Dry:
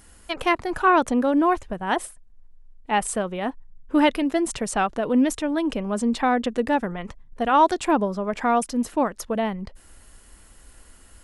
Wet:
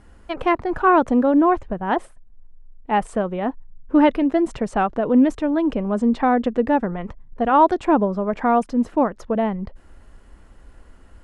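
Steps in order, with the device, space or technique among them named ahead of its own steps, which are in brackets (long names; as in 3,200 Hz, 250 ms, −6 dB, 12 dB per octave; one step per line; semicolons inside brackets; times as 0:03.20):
through cloth (low-pass filter 8,300 Hz 12 dB per octave; high-shelf EQ 2,600 Hz −18 dB)
level +4.5 dB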